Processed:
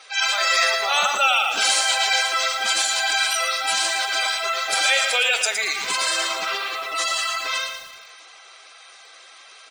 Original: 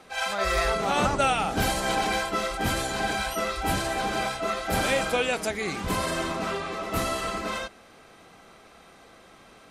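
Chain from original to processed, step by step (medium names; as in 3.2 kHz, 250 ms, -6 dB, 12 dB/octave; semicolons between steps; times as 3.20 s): frequency weighting ITU-R 468; feedback delay 184 ms, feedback 52%, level -14.5 dB; spectral gate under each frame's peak -15 dB strong; high-pass 79 Hz 12 dB/octave; bass shelf 220 Hz -6 dB; de-hum 350.7 Hz, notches 35; bit-crushed delay 113 ms, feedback 35%, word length 7-bit, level -6.5 dB; trim +3 dB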